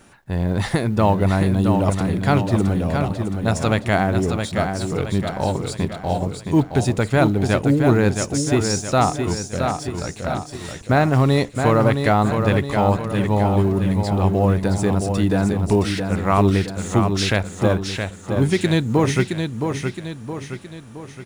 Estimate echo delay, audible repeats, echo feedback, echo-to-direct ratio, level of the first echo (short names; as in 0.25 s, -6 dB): 0.668 s, 5, 48%, -5.0 dB, -6.0 dB